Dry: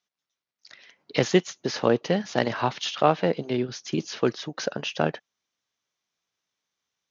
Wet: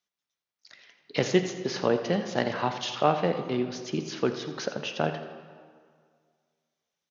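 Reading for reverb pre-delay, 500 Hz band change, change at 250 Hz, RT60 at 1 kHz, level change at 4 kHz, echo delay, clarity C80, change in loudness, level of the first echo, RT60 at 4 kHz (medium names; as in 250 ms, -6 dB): 3 ms, -2.5 dB, -2.5 dB, 2.0 s, -3.0 dB, 84 ms, 9.0 dB, -2.5 dB, -14.0 dB, 1.3 s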